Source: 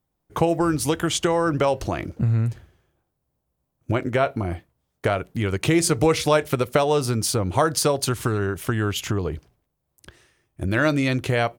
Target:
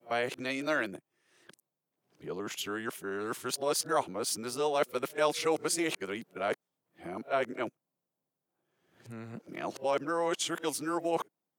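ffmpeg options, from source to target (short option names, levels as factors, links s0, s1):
-filter_complex "[0:a]areverse,highpass=f=170:w=0.5412,highpass=f=170:w=1.3066,acrossover=split=340|4800[s0][s1][s2];[s0]acompressor=threshold=0.0158:ratio=6[s3];[s3][s1][s2]amix=inputs=3:normalize=0,volume=0.376"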